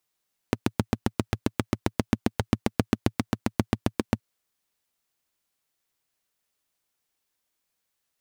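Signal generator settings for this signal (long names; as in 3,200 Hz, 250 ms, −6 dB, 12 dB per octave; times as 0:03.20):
pulse-train model of a single-cylinder engine, steady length 3.67 s, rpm 900, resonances 110/220 Hz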